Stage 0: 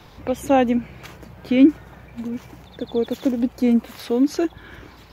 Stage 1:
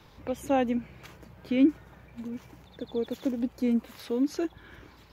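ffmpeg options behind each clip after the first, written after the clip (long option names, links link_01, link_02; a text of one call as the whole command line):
ffmpeg -i in.wav -af "bandreject=frequency=720:width=17,volume=-8.5dB" out.wav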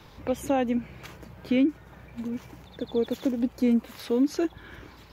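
ffmpeg -i in.wav -af "alimiter=limit=-19.5dB:level=0:latency=1:release=368,volume=4.5dB" out.wav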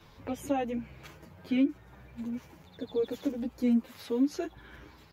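ffmpeg -i in.wav -filter_complex "[0:a]asplit=2[link_01][link_02];[link_02]adelay=9.1,afreqshift=0.76[link_03];[link_01][link_03]amix=inputs=2:normalize=1,volume=-2.5dB" out.wav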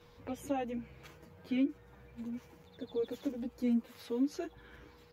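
ffmpeg -i in.wav -af "aeval=exprs='val(0)+0.00141*sin(2*PI*480*n/s)':channel_layout=same,volume=-5dB" out.wav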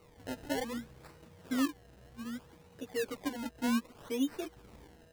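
ffmpeg -i in.wav -af "acrusher=samples=26:mix=1:aa=0.000001:lfo=1:lforange=26:lforate=0.64" out.wav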